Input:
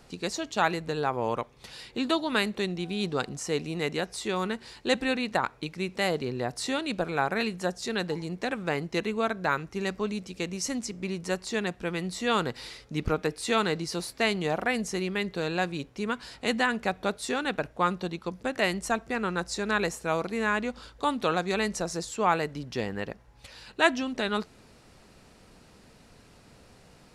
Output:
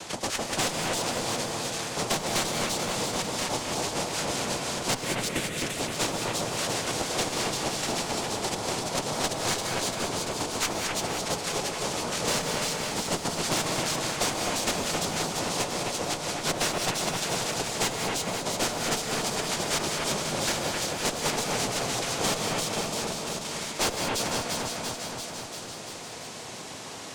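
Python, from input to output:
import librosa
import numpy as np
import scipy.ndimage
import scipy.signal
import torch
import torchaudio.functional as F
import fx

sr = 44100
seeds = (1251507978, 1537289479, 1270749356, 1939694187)

p1 = fx.peak_eq(x, sr, hz=6100.0, db=7.5, octaves=2.2)
p2 = fx.level_steps(p1, sr, step_db=24)
p3 = p1 + (p2 * 10.0 ** (0.5 / 20.0))
p4 = fx.noise_vocoder(p3, sr, seeds[0], bands=2)
p5 = fx.fixed_phaser(p4, sr, hz=2200.0, stages=4, at=(5.01, 5.56))
p6 = fx.tube_stage(p5, sr, drive_db=16.0, bias=0.6)
p7 = fx.echo_split(p6, sr, split_hz=3000.0, low_ms=261, high_ms=342, feedback_pct=52, wet_db=-4.0)
p8 = fx.rev_gated(p7, sr, seeds[1], gate_ms=220, shape='rising', drr_db=5.5)
p9 = fx.band_squash(p8, sr, depth_pct=70)
y = p9 * 10.0 ** (-3.0 / 20.0)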